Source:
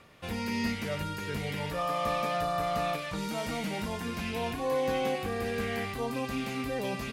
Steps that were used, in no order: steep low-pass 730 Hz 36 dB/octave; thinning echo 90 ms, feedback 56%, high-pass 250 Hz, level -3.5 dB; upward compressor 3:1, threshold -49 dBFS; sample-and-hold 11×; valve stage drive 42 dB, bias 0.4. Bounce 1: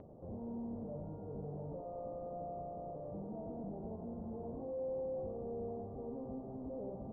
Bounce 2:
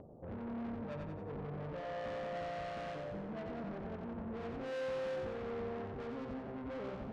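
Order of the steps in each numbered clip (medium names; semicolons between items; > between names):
valve stage > thinning echo > sample-and-hold > steep low-pass > upward compressor; sample-and-hold > steep low-pass > valve stage > thinning echo > upward compressor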